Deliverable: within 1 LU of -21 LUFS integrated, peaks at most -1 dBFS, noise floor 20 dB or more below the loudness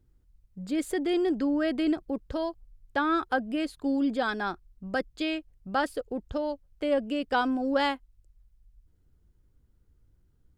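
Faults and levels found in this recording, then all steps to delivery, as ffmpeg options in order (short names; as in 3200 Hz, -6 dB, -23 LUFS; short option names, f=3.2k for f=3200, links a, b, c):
loudness -29.5 LUFS; peak -14.0 dBFS; loudness target -21.0 LUFS
-> -af "volume=8.5dB"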